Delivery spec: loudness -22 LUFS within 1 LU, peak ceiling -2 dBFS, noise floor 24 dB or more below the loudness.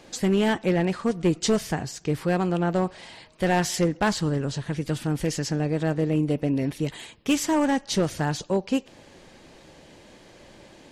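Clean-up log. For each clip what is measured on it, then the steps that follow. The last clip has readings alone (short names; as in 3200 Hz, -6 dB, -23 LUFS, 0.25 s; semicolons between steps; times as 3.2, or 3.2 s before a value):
clipped 1.1%; flat tops at -15.0 dBFS; loudness -25.5 LUFS; peak -15.0 dBFS; loudness target -22.0 LUFS
-> clip repair -15 dBFS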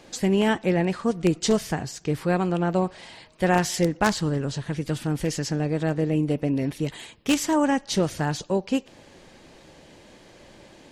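clipped 0.0%; loudness -25.0 LUFS; peak -6.0 dBFS; loudness target -22.0 LUFS
-> gain +3 dB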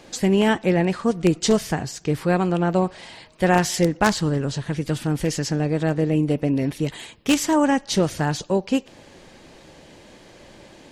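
loudness -22.0 LUFS; peak -3.0 dBFS; noise floor -48 dBFS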